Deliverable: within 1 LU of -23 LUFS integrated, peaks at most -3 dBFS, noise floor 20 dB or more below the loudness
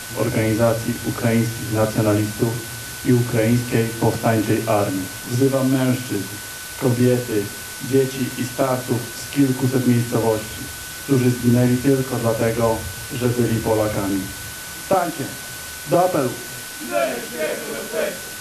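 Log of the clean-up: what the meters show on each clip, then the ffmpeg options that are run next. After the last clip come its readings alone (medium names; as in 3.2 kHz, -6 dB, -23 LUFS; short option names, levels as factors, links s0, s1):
steady tone 1.5 kHz; tone level -37 dBFS; noise floor -33 dBFS; noise floor target -41 dBFS; loudness -21.0 LUFS; peak level -4.5 dBFS; loudness target -23.0 LUFS
-> -af "bandreject=f=1500:w=30"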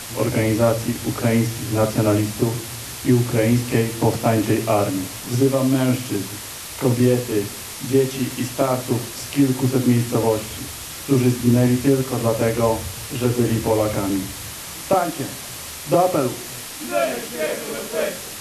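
steady tone not found; noise floor -34 dBFS; noise floor target -41 dBFS
-> -af "afftdn=nr=7:nf=-34"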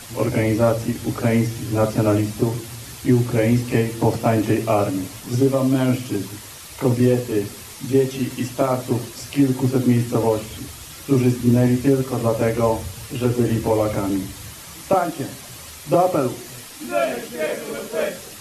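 noise floor -38 dBFS; noise floor target -41 dBFS
-> -af "afftdn=nr=6:nf=-38"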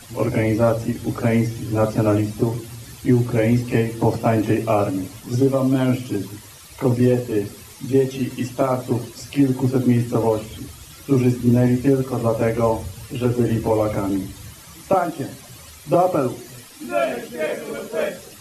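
noise floor -42 dBFS; loudness -21.0 LUFS; peak level -5.5 dBFS; loudness target -23.0 LUFS
-> -af "volume=0.794"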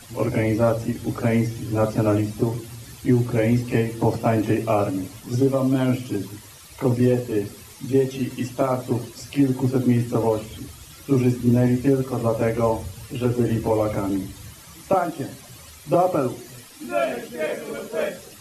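loudness -23.0 LUFS; peak level -7.5 dBFS; noise floor -44 dBFS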